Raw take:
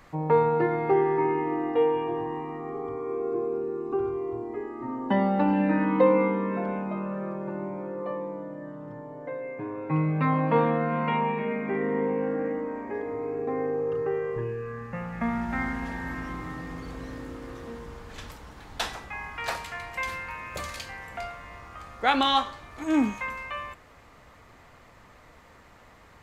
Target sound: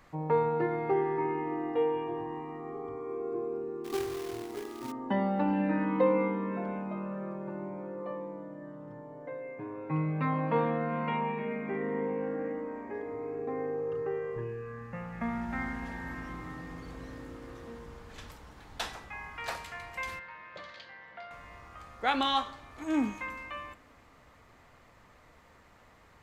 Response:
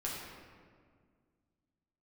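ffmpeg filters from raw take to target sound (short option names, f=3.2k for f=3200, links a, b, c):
-filter_complex "[0:a]asettb=1/sr,asplit=3[a][b][c];[a]atrim=end=3.844[d];[b]atrim=start=3.84:end=4.92,asetpts=PTS-STARTPTS,afade=t=in:d=0.004:c=qsin,afade=t=out:st=1.076:d=0.004:c=qsin,acrusher=bits=2:mode=log:mix=0:aa=0.000001[e];[c]atrim=start=4.916[f];[d][e]acrossfade=d=0.004:c1=hsin:c2=qsin[g];[g][f]acrossfade=d=0.004:c1=qsin:c2=hsin,asettb=1/sr,asplit=3[h][i][j];[h]atrim=end=20.194[k];[i]atrim=start=20.19:end=21.31,asetpts=PTS-STARTPTS,afade=t=in:d=0.004:c=qsin,afade=t=out:st=1.116:d=0.004:c=qsin,highpass=240,equalizer=f=260:t=q:w=4:g=-9,equalizer=f=410:t=q:w=4:g=-8,equalizer=f=780:t=q:w=4:g=-7,equalizer=f=1.2k:t=q:w=4:g=-5,equalizer=f=2.5k:t=q:w=4:g=-9,lowpass=f=3.9k:w=0.5412,lowpass=f=3.9k:w=1.3066[l];[j]atrim=start=21.306[m];[k][l]acrossfade=d=0.004:c1=hsin:c2=qsin[n];[n][m]acrossfade=d=0.004:c1=qsin:c2=hsin,asplit=2[o][p];[1:a]atrim=start_sample=2205[q];[p][q]afir=irnorm=-1:irlink=0,volume=-24dB[r];[o][r]amix=inputs=2:normalize=0,volume=-6dB"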